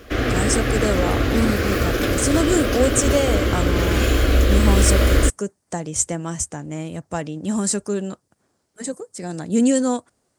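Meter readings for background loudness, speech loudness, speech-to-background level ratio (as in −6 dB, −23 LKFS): −20.0 LKFS, −23.5 LKFS, −3.5 dB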